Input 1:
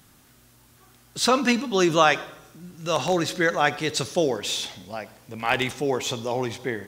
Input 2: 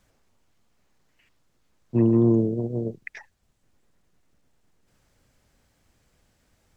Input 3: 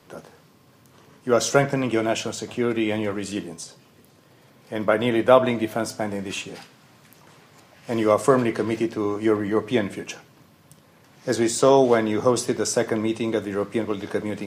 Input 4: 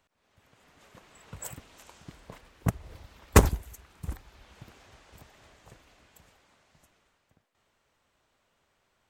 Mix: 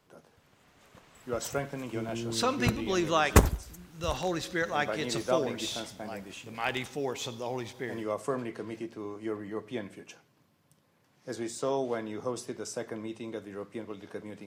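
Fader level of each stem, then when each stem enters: -8.5, -18.0, -14.5, -2.0 dB; 1.15, 0.00, 0.00, 0.00 s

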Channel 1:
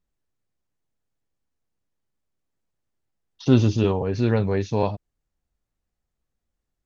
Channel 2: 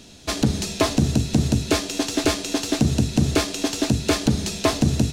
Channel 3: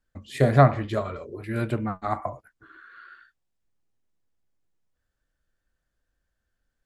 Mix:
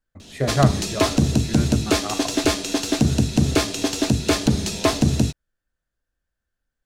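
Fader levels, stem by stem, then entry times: -19.5, +1.0, -3.0 dB; 0.00, 0.20, 0.00 s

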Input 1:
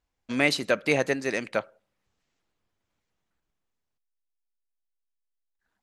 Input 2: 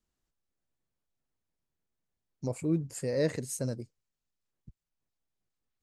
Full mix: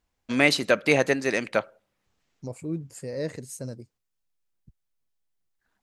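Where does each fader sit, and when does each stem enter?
+3.0, -2.5 dB; 0.00, 0.00 s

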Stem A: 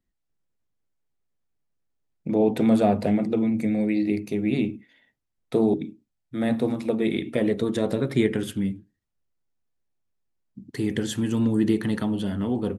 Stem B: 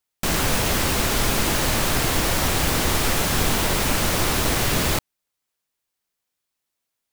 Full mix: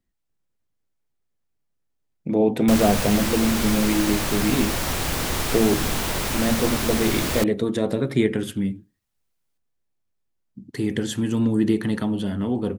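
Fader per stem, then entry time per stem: +1.5, -4.0 dB; 0.00, 2.45 s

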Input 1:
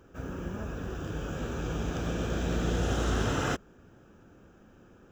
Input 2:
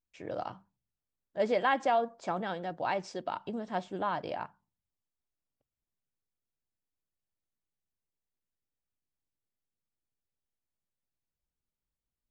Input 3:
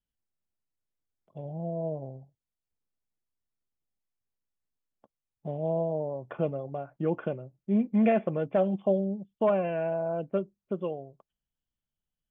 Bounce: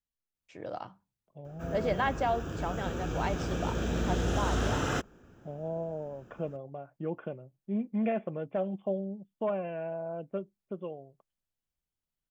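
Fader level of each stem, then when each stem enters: -1.0, -2.0, -6.5 dB; 1.45, 0.35, 0.00 s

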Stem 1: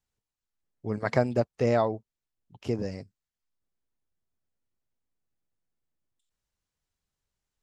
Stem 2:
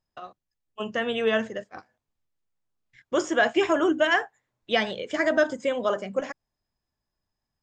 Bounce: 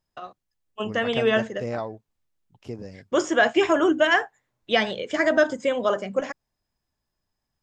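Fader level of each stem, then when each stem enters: -6.0, +2.5 dB; 0.00, 0.00 s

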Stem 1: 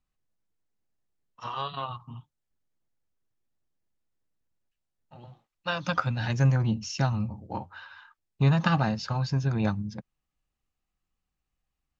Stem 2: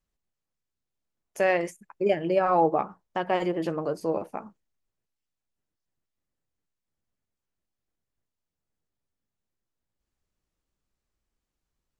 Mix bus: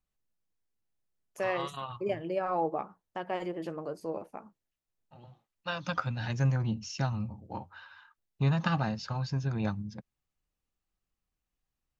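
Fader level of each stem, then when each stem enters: -5.0, -8.5 dB; 0.00, 0.00 s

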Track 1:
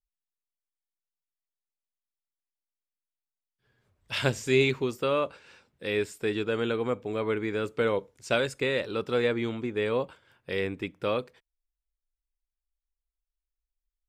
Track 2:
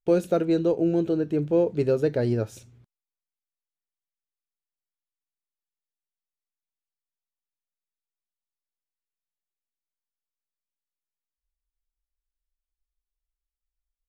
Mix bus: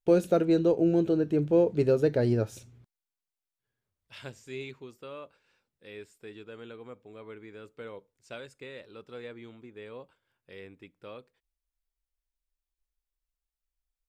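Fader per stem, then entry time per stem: -16.5, -1.0 dB; 0.00, 0.00 s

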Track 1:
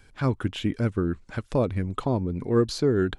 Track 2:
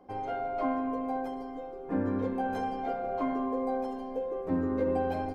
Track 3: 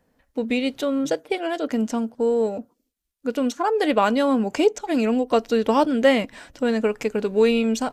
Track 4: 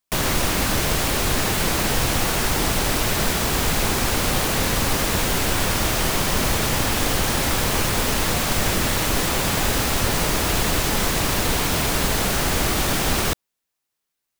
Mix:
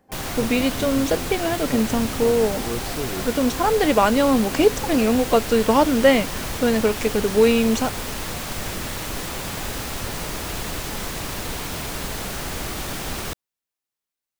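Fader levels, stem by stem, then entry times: -8.0, -7.5, +2.0, -8.0 dB; 0.15, 0.00, 0.00, 0.00 s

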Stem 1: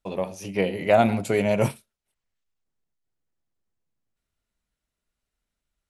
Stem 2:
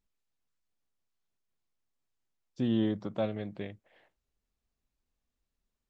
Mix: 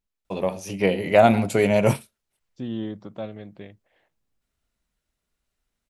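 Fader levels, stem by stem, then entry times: +3.0, -2.0 dB; 0.25, 0.00 s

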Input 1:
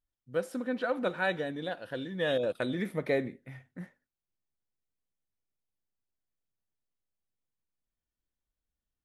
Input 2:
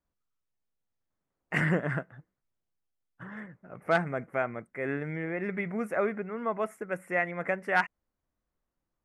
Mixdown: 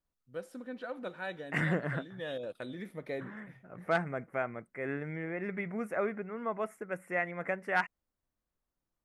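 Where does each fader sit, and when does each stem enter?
-9.5, -4.0 dB; 0.00, 0.00 s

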